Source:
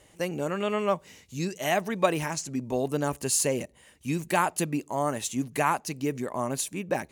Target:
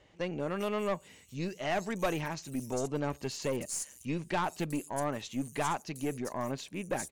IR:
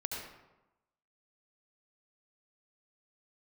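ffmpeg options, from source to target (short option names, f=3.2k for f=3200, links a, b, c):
-filter_complex "[0:a]acrossover=split=8300[a][b];[b]acompressor=threshold=-43dB:ratio=4:attack=1:release=60[c];[a][c]amix=inputs=2:normalize=0,acrossover=split=5600[d][e];[e]adelay=400[f];[d][f]amix=inputs=2:normalize=0,aeval=exprs='(tanh(11.2*val(0)+0.35)-tanh(0.35))/11.2':c=same,volume=-3dB"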